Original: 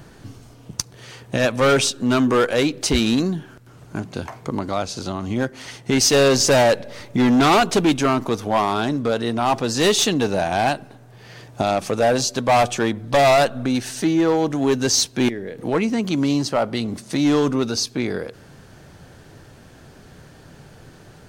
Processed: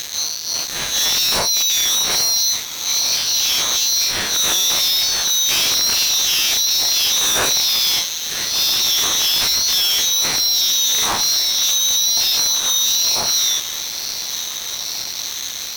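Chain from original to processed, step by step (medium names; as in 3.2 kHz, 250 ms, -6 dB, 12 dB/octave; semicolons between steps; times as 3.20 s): spectral blur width 109 ms; frequency inversion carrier 3.9 kHz; speed mistake 33 rpm record played at 45 rpm; fuzz box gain 43 dB, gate -45 dBFS; echo that smears into a reverb 1537 ms, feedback 63%, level -13 dB; ring modulator with a swept carrier 950 Hz, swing 20%, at 1.1 Hz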